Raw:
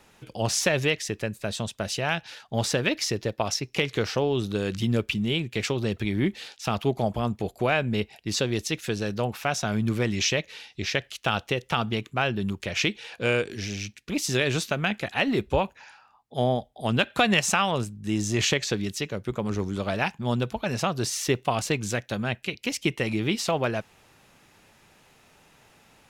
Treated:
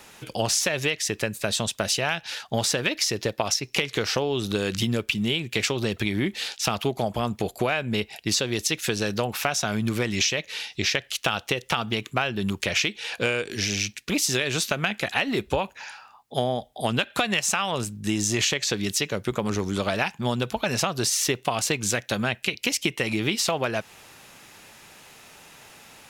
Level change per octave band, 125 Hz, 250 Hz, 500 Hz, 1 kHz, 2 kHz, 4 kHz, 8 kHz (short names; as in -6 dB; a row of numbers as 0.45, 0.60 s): -2.0, -0.5, 0.0, 0.0, +2.0, +4.0, +5.5 dB